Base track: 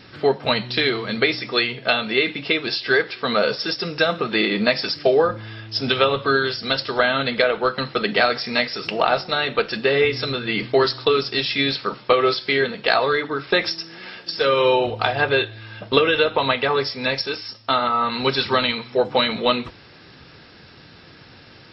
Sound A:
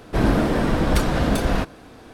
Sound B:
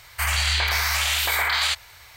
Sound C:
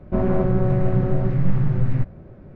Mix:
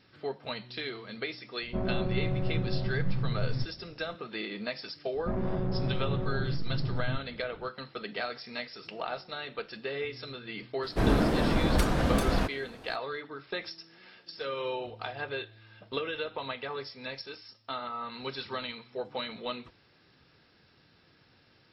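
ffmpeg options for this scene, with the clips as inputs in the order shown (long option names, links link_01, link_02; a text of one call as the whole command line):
ffmpeg -i bed.wav -i cue0.wav -i cue1.wav -i cue2.wav -filter_complex "[3:a]asplit=2[link_01][link_02];[0:a]volume=-17dB[link_03];[link_02]asoftclip=type=tanh:threshold=-17dB[link_04];[link_01]atrim=end=2.55,asetpts=PTS-STARTPTS,volume=-11dB,afade=type=in:duration=0.004:curve=hsin,afade=type=out:start_time=2.546:duration=0.004:curve=hsin,adelay=1610[link_05];[link_04]atrim=end=2.55,asetpts=PTS-STARTPTS,volume=-8dB,afade=type=in:duration=0.004:curve=hsin,afade=type=out:start_time=2.546:duration=0.004:curve=hsin,adelay=5140[link_06];[1:a]atrim=end=2.13,asetpts=PTS-STARTPTS,volume=-6dB,afade=type=in:duration=0.004:curve=hsin,afade=type=out:start_time=2.126:duration=0.004:curve=hsin,adelay=10830[link_07];[link_03][link_05][link_06][link_07]amix=inputs=4:normalize=0" out.wav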